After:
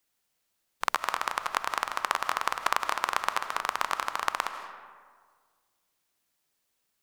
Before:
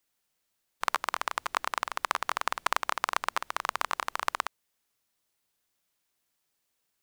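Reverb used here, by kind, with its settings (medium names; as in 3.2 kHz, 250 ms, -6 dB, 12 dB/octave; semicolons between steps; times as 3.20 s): algorithmic reverb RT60 1.7 s, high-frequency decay 0.5×, pre-delay 115 ms, DRR 9 dB; trim +1 dB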